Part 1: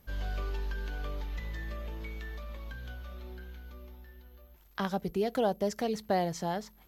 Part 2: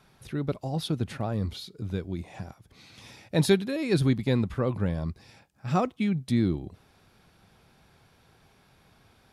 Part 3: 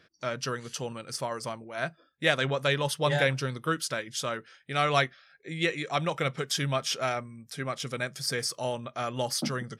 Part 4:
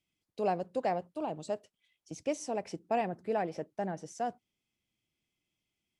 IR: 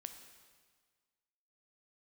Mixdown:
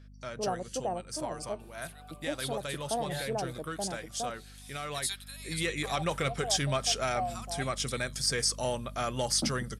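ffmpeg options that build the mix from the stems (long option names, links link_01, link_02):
-filter_complex "[0:a]asplit=3[link_01][link_02][link_03];[link_01]bandpass=frequency=730:width_type=q:width=8,volume=0dB[link_04];[link_02]bandpass=frequency=1090:width_type=q:width=8,volume=-6dB[link_05];[link_03]bandpass=frequency=2440:width_type=q:width=8,volume=-9dB[link_06];[link_04][link_05][link_06]amix=inputs=3:normalize=0,adelay=1050,volume=-1dB[link_07];[1:a]highpass=frequency=990:width=0.5412,highpass=frequency=990:width=1.3066,highshelf=frequency=5600:gain=8.5,aexciter=amount=1.9:drive=3.5:freq=3200,adelay=1600,volume=-13dB[link_08];[2:a]alimiter=limit=-18.5dB:level=0:latency=1:release=124,aeval=exprs='val(0)+0.00708*(sin(2*PI*50*n/s)+sin(2*PI*2*50*n/s)/2+sin(2*PI*3*50*n/s)/3+sin(2*PI*4*50*n/s)/4+sin(2*PI*5*50*n/s)/5)':channel_layout=same,asoftclip=type=tanh:threshold=-18.5dB,afade=type=in:start_time=5.2:duration=0.46:silence=0.421697[link_09];[3:a]lowpass=frequency=1300:width=0.5412,lowpass=frequency=1300:width=1.3066,volume=-2.5dB[link_10];[link_07][link_08][link_09][link_10]amix=inputs=4:normalize=0,acrossover=split=8700[link_11][link_12];[link_12]acompressor=threshold=-52dB:ratio=4:attack=1:release=60[link_13];[link_11][link_13]amix=inputs=2:normalize=0,equalizer=frequency=8700:width=0.95:gain=10"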